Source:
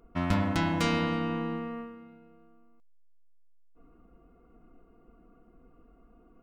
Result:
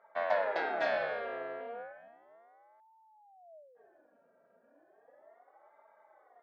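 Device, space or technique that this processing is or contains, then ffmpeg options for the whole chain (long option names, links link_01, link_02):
voice changer toy: -filter_complex "[0:a]aeval=exprs='val(0)*sin(2*PI*540*n/s+540*0.65/0.34*sin(2*PI*0.34*n/s))':channel_layout=same,highpass=490,equalizer=frequency=630:width_type=q:width=4:gain=10,equalizer=frequency=970:width_type=q:width=4:gain=-6,equalizer=frequency=1700:width_type=q:width=4:gain=7,equalizer=frequency=2900:width_type=q:width=4:gain=-8,lowpass=frequency=4200:width=0.5412,lowpass=frequency=4200:width=1.3066,asettb=1/sr,asplit=3[link_01][link_02][link_03];[link_01]atrim=end=1.604[link_04];[link_02]atrim=start=1.6:end=2.08,asetpts=PTS-STARTPTS,afade=type=in:duration=0.004:curve=qsin,afade=type=out:start_time=0.476:duration=0.004:curve=qsin,aecho=1:1:4:0.65,atrim=end_sample=21168[link_05];[link_03]atrim=start=2.076[link_06];[link_04][link_05]acrossfade=duration=0.004:curve1=hsin:curve2=qsin[link_07];[link_07][link_06]acrossfade=duration=0.004:curve1=qsin:curve2=hsin,volume=-3dB"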